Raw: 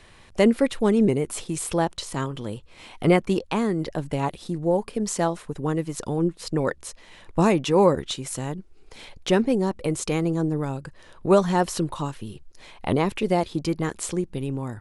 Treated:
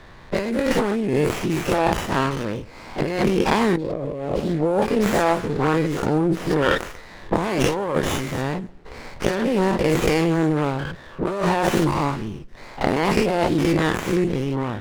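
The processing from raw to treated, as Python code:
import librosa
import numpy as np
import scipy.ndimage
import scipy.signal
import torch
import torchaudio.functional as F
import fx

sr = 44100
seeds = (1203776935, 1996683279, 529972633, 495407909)

p1 = fx.spec_dilate(x, sr, span_ms=120)
p2 = fx.env_lowpass(p1, sr, base_hz=1800.0, full_db=-15.0)
p3 = fx.low_shelf_res(p2, sr, hz=760.0, db=10.5, q=3.0, at=(3.77, 4.4))
p4 = p3 + fx.echo_feedback(p3, sr, ms=138, feedback_pct=35, wet_db=-23.0, dry=0)
p5 = fx.over_compress(p4, sr, threshold_db=-20.0, ratio=-1.0)
p6 = fx.peak_eq(p5, sr, hz=1900.0, db=5.0, octaves=1.3)
y = fx.running_max(p6, sr, window=9)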